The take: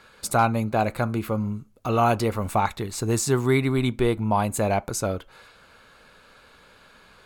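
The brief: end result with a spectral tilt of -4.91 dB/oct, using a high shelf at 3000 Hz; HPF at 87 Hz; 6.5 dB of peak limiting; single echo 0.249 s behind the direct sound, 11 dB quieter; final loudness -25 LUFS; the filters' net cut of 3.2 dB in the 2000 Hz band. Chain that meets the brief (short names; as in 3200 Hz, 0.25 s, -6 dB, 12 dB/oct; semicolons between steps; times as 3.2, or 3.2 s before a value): HPF 87 Hz; bell 2000 Hz -6.5 dB; high shelf 3000 Hz +5.5 dB; limiter -14.5 dBFS; echo 0.249 s -11 dB; gain +1 dB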